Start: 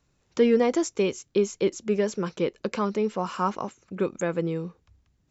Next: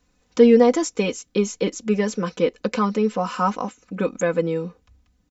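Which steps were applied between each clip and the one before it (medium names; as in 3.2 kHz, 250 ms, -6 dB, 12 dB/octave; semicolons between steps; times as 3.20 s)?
comb 4 ms, depth 77%; trim +3 dB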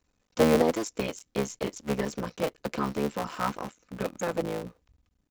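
cycle switcher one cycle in 3, muted; trim -7 dB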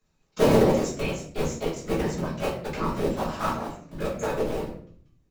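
whisper effect; simulated room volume 63 m³, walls mixed, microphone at 1.4 m; trim -4.5 dB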